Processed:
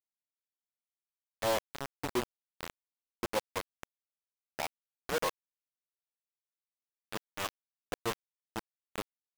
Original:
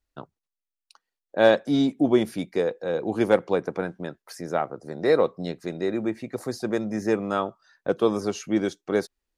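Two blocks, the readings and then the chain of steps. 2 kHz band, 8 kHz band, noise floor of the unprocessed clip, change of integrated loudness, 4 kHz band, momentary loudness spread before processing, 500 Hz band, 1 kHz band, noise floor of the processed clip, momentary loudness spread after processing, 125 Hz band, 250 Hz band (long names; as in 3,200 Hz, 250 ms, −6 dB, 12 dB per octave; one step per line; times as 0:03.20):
−10.0 dB, can't be measured, below −85 dBFS, −13.0 dB, −5.5 dB, 12 LU, −16.5 dB, −8.5 dB, below −85 dBFS, 14 LU, −15.0 dB, −20.5 dB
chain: transistor ladder low-pass 1,100 Hz, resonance 75%
tuned comb filter 120 Hz, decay 0.22 s, harmonics odd, mix 40%
all-pass dispersion highs, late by 53 ms, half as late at 400 Hz
bit reduction 5 bits
level −1.5 dB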